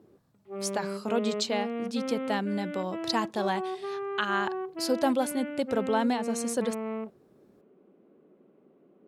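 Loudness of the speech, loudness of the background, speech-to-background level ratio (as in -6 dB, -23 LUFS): -30.5 LUFS, -35.5 LUFS, 5.0 dB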